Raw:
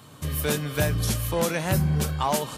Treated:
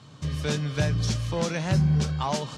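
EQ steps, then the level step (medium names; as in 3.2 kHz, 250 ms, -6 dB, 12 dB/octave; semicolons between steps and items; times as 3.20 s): four-pole ladder low-pass 6.9 kHz, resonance 35%; peaking EQ 140 Hz +7 dB 0.97 oct; +3.5 dB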